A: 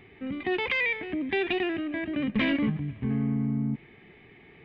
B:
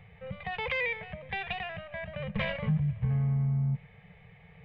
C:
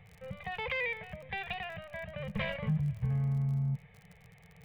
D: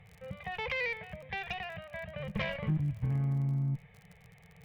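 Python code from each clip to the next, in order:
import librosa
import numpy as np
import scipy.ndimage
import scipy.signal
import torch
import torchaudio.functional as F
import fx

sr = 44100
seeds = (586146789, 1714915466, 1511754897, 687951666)

y1 = scipy.signal.sosfilt(scipy.signal.ellip(3, 1.0, 40, [180.0, 490.0], 'bandstop', fs=sr, output='sos'), x)
y1 = fx.tilt_shelf(y1, sr, db=6.0, hz=790.0)
y2 = fx.dmg_crackle(y1, sr, seeds[0], per_s=42.0, level_db=-41.0)
y2 = F.gain(torch.from_numpy(y2), -3.0).numpy()
y3 = fx.cheby_harmonics(y2, sr, harmonics=(2,), levels_db=(-13,), full_scale_db=-21.5)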